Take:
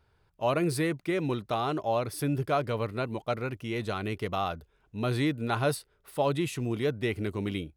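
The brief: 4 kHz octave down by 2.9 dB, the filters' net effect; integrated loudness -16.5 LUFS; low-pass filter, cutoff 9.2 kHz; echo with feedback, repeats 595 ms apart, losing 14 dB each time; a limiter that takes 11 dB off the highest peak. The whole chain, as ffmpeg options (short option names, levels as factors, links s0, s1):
-af "lowpass=9200,equalizer=f=4000:t=o:g=-3.5,alimiter=level_in=1.33:limit=0.0631:level=0:latency=1,volume=0.75,aecho=1:1:595|1190:0.2|0.0399,volume=9.44"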